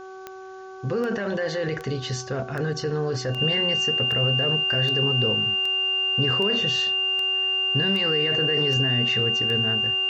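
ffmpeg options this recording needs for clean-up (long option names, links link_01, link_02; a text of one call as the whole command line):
ffmpeg -i in.wav -af "adeclick=threshold=4,bandreject=frequency=379.2:width_type=h:width=4,bandreject=frequency=758.4:width_type=h:width=4,bandreject=frequency=1137.6:width_type=h:width=4,bandreject=frequency=1516.8:width_type=h:width=4,bandreject=frequency=2800:width=30,agate=range=-21dB:threshold=-27dB" out.wav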